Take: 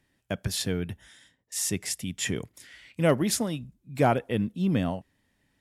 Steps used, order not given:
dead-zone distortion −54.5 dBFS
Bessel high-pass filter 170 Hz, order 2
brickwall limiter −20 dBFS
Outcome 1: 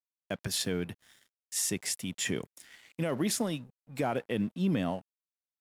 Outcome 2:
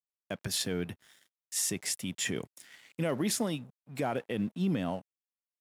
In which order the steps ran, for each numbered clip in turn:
Bessel high-pass filter, then brickwall limiter, then dead-zone distortion
brickwall limiter, then dead-zone distortion, then Bessel high-pass filter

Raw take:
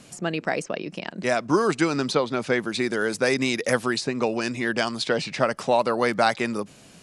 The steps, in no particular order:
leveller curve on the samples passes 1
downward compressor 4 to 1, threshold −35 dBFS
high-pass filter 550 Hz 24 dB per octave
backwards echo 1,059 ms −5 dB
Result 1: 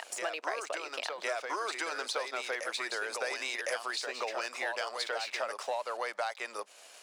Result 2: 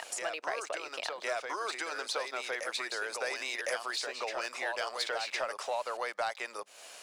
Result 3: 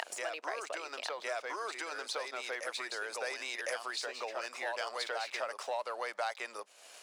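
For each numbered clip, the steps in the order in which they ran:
leveller curve on the samples, then high-pass filter, then downward compressor, then backwards echo
downward compressor, then high-pass filter, then leveller curve on the samples, then backwards echo
leveller curve on the samples, then backwards echo, then downward compressor, then high-pass filter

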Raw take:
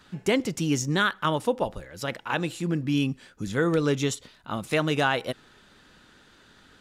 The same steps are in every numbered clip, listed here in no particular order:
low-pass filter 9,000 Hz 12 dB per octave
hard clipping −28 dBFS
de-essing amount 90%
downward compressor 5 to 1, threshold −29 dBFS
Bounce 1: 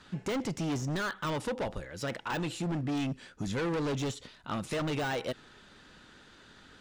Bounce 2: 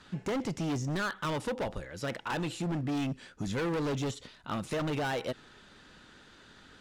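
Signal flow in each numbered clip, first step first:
hard clipping, then low-pass filter, then de-essing, then downward compressor
de-essing, then low-pass filter, then hard clipping, then downward compressor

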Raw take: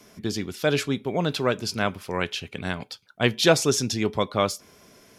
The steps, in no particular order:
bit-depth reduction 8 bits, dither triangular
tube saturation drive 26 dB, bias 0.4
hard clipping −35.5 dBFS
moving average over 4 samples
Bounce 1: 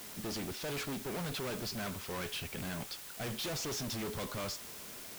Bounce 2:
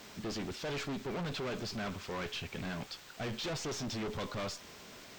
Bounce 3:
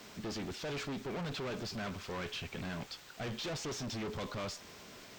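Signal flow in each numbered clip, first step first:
moving average, then hard clipping, then tube saturation, then bit-depth reduction
tube saturation, then bit-depth reduction, then hard clipping, then moving average
bit-depth reduction, then hard clipping, then tube saturation, then moving average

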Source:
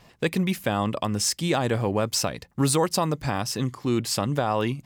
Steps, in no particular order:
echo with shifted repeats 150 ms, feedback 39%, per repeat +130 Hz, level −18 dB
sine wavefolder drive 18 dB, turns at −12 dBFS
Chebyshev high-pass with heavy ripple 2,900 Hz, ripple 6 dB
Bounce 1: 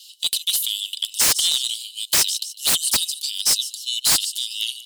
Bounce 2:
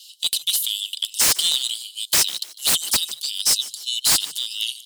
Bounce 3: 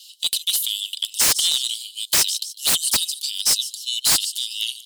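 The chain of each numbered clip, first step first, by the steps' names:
echo with shifted repeats, then Chebyshev high-pass with heavy ripple, then sine wavefolder
Chebyshev high-pass with heavy ripple, then sine wavefolder, then echo with shifted repeats
Chebyshev high-pass with heavy ripple, then echo with shifted repeats, then sine wavefolder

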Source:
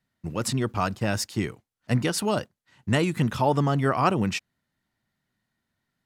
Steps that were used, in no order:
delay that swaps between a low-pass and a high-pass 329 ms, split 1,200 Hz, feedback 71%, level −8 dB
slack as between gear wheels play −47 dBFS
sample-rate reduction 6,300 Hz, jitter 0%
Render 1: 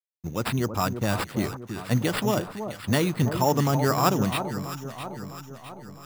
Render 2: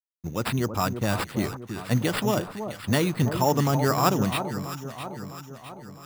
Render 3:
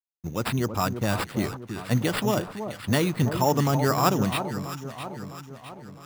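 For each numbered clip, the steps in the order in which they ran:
sample-rate reduction, then slack as between gear wheels, then delay that swaps between a low-pass and a high-pass
slack as between gear wheels, then sample-rate reduction, then delay that swaps between a low-pass and a high-pass
sample-rate reduction, then delay that swaps between a low-pass and a high-pass, then slack as between gear wheels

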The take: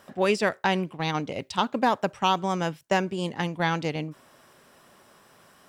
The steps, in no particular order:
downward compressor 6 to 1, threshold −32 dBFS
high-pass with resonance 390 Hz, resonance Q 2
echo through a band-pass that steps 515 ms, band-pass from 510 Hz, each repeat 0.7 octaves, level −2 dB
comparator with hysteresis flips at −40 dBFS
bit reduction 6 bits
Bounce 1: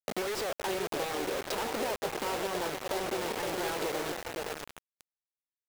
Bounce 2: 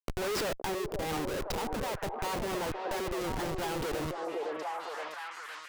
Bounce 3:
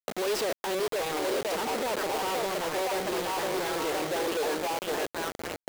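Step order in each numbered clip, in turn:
comparator with hysteresis, then high-pass with resonance, then downward compressor, then echo through a band-pass that steps, then bit reduction
high-pass with resonance, then bit reduction, then comparator with hysteresis, then echo through a band-pass that steps, then downward compressor
echo through a band-pass that steps, then comparator with hysteresis, then downward compressor, then high-pass with resonance, then bit reduction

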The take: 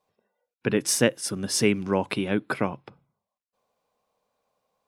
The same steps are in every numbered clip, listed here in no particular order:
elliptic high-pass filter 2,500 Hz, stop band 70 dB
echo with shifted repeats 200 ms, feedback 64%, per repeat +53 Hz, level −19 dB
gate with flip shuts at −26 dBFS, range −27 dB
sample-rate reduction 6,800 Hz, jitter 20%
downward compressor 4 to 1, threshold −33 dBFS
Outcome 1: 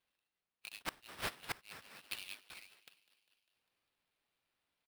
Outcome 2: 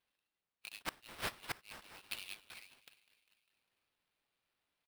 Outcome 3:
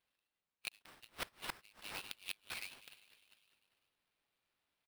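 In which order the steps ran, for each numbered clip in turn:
downward compressor, then elliptic high-pass filter, then sample-rate reduction, then echo with shifted repeats, then gate with flip
downward compressor, then echo with shifted repeats, then elliptic high-pass filter, then sample-rate reduction, then gate with flip
elliptic high-pass filter, then echo with shifted repeats, then downward compressor, then gate with flip, then sample-rate reduction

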